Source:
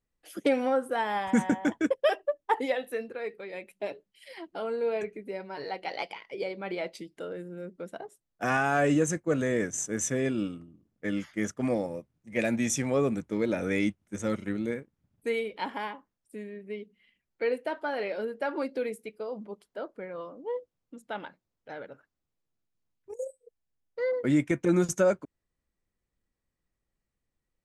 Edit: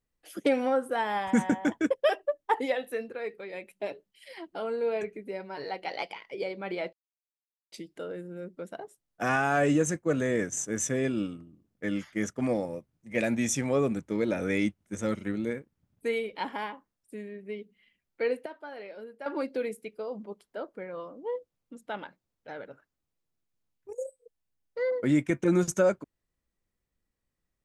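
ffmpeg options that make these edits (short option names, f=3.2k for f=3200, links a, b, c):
-filter_complex "[0:a]asplit=4[a][b][c][d];[a]atrim=end=6.93,asetpts=PTS-STARTPTS,afade=t=out:st=6.926:d=0.004:c=hsin,apad=pad_dur=0.79[e];[b]atrim=start=6.93:end=17.672,asetpts=PTS-STARTPTS,afade=t=in:d=0.004:c=hsin[f];[c]atrim=start=17.668:end=18.472,asetpts=PTS-STARTPTS,volume=-10.5dB[g];[d]atrim=start=18.468[h];[e][f]concat=n=2:v=0:a=1[i];[i][g]acrossfade=d=0.004:c1=hsin:c2=hsin[j];[j][h]acrossfade=d=0.004:c1=hsin:c2=hsin"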